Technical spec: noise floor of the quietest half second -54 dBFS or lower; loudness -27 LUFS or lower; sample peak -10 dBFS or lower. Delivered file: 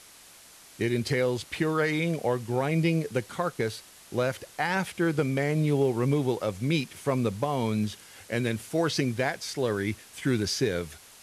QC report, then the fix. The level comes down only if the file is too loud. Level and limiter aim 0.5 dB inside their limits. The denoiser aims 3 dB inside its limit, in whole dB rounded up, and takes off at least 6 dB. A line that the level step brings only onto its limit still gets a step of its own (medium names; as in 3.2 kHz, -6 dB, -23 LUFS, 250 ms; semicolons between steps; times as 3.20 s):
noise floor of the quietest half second -52 dBFS: fail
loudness -28.0 LUFS: pass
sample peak -14.0 dBFS: pass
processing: noise reduction 6 dB, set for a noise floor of -52 dBFS